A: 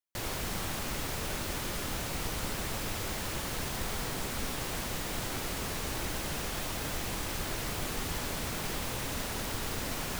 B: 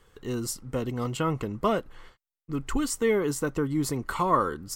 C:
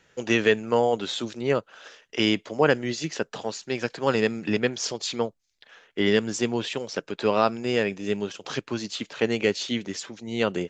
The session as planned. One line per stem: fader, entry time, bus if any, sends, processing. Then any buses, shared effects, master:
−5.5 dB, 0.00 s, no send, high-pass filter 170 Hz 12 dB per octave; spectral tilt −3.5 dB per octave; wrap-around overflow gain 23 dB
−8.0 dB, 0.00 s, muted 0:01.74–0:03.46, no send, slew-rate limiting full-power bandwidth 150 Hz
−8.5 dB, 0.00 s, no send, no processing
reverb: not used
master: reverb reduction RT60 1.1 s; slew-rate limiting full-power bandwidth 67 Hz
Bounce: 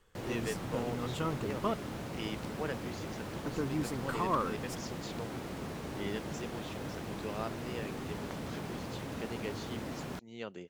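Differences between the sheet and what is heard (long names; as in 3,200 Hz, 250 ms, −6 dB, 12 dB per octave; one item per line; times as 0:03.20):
stem C −8.5 dB → −18.0 dB
master: missing reverb reduction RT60 1.1 s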